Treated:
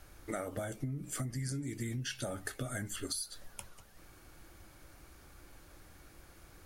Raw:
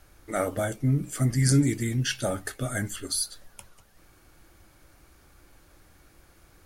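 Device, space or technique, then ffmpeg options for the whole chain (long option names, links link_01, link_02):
serial compression, leveller first: -af "acompressor=threshold=-27dB:ratio=2,acompressor=threshold=-35dB:ratio=8"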